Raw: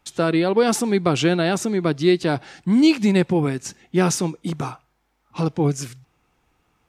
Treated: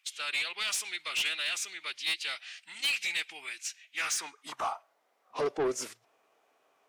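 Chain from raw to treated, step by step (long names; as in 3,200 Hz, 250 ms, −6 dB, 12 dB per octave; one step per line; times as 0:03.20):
phase-vocoder pitch shift with formants kept −2 semitones
high-pass filter sweep 2,500 Hz → 510 Hz, 0:03.93–0:05.01
soft clipping −21.5 dBFS, distortion −10 dB
level −3.5 dB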